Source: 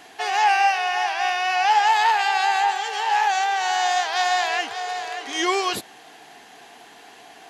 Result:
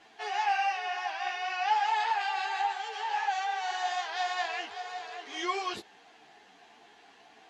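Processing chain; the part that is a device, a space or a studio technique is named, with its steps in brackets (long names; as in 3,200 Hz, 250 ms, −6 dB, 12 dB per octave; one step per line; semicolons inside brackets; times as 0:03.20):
string-machine ensemble chorus (string-ensemble chorus; low-pass filter 5,700 Hz 12 dB per octave)
level −7.5 dB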